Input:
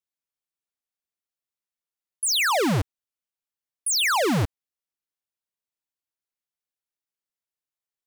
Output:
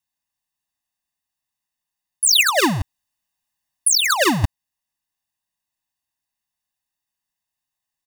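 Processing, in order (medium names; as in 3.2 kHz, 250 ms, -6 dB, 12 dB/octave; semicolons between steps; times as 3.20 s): comb 1.1 ms, depth 91%; 2.40–4.44 s: compressor with a negative ratio -22 dBFS, ratio -0.5; trim +5.5 dB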